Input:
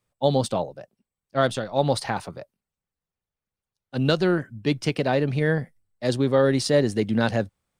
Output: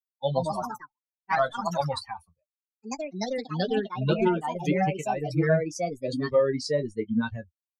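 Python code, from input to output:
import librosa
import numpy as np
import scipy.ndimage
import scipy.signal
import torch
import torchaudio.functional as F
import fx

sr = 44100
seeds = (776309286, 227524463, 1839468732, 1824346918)

y = fx.bin_expand(x, sr, power=3.0)
y = fx.high_shelf(y, sr, hz=6100.0, db=9.0)
y = fx.room_early_taps(y, sr, ms=(13, 25), db=(-7.5, -17.0))
y = fx.echo_pitch(y, sr, ms=162, semitones=3, count=3, db_per_echo=-3.0)
y = fx.env_lowpass_down(y, sr, base_hz=2000.0, full_db=-20.0)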